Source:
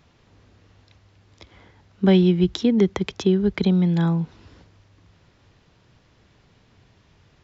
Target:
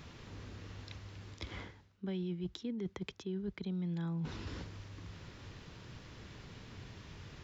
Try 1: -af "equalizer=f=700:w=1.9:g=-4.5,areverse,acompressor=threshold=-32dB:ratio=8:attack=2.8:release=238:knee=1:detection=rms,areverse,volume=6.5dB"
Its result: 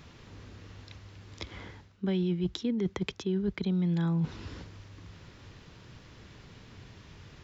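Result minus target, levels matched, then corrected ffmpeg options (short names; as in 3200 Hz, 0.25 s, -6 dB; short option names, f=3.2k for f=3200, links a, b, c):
compressor: peak gain reduction -9 dB
-af "equalizer=f=700:w=1.9:g=-4.5,areverse,acompressor=threshold=-42.5dB:ratio=8:attack=2.8:release=238:knee=1:detection=rms,areverse,volume=6.5dB"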